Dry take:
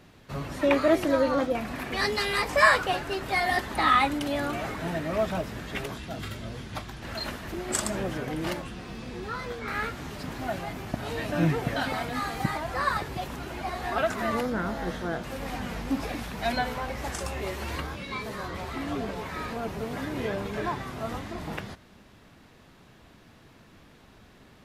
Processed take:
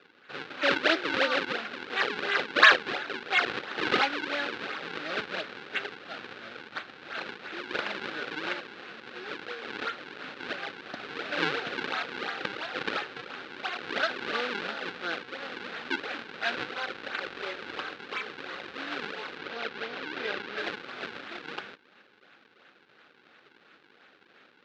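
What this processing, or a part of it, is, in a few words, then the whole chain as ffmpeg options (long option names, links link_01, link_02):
circuit-bent sampling toy: -filter_complex "[0:a]acrusher=samples=41:mix=1:aa=0.000001:lfo=1:lforange=65.6:lforate=2.9,highpass=540,equalizer=frequency=660:width_type=q:width=4:gain=-8,equalizer=frequency=980:width_type=q:width=4:gain=-8,equalizer=frequency=1500:width_type=q:width=4:gain=7,equalizer=frequency=2600:width_type=q:width=4:gain=3,equalizer=frequency=3900:width_type=q:width=4:gain=4,lowpass=frequency=4200:width=0.5412,lowpass=frequency=4200:width=1.3066,asettb=1/sr,asplit=3[link_01][link_02][link_03];[link_01]atrim=end=19.384[link_04];[link_02]atrim=start=19.38:end=20.58,asetpts=PTS-STARTPTS,afade=type=in:duration=0.004:curve=qsin,afade=type=out:start_time=1.196:duration=0.004:curve=qsin,lowpass=6300[link_05];[link_03]atrim=start=20.576[link_06];[link_04][link_05]acrossfade=duration=0.004:curve1=hsin:curve2=qsin[link_07];[link_07][link_06]acrossfade=duration=0.004:curve1=qsin:curve2=hsin,volume=2dB"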